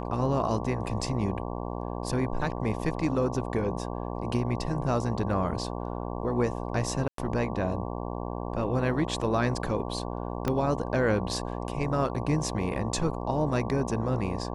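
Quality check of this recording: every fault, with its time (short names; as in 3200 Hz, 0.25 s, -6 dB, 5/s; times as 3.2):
buzz 60 Hz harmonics 19 -34 dBFS
7.08–7.18 gap 0.103 s
10.48 pop -14 dBFS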